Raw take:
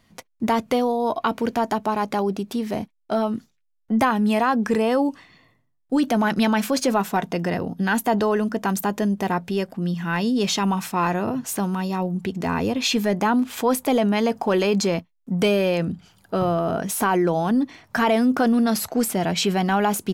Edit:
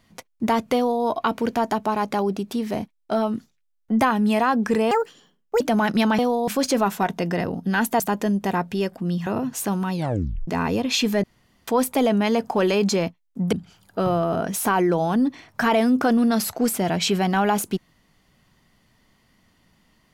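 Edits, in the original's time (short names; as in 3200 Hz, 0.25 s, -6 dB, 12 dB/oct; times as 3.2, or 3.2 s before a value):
0.75–1.04 copy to 6.61
4.91–6.03 speed 161%
8.13–8.76 cut
10.03–11.18 cut
11.84 tape stop 0.55 s
13.15–13.59 room tone
15.44–15.88 cut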